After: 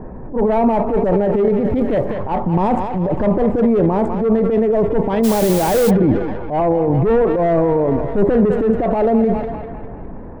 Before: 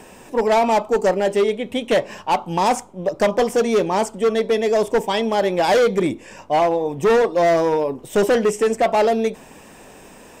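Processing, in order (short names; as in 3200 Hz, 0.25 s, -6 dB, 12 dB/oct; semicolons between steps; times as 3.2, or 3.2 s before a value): Wiener smoothing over 15 samples; bell 6100 Hz -14 dB 1.4 oct; thinning echo 0.2 s, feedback 65%, high-pass 470 Hz, level -13 dB; compressor, threshold -21 dBFS, peak gain reduction 7.5 dB; transient shaper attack -9 dB, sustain +7 dB; low-pass opened by the level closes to 1700 Hz, open at -22.5 dBFS; RIAA curve playback; 1.58–2.13 crackle 58/s -> 150/s -48 dBFS; 5.23–5.89 added noise white -33 dBFS; gain +5.5 dB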